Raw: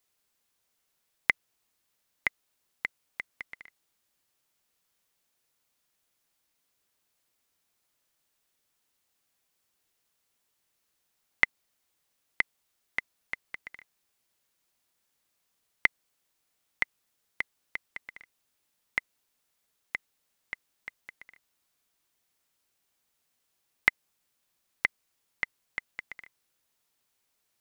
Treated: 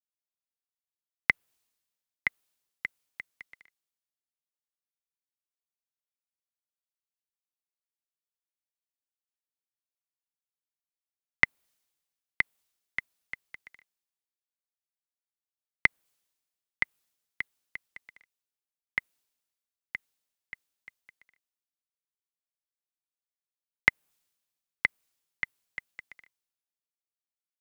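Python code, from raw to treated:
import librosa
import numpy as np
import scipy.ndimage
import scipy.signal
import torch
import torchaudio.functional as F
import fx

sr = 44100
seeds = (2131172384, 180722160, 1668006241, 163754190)

y = fx.dynamic_eq(x, sr, hz=5300.0, q=0.85, threshold_db=-47.0, ratio=4.0, max_db=-5)
y = fx.band_widen(y, sr, depth_pct=70)
y = y * 10.0 ** (-4.0 / 20.0)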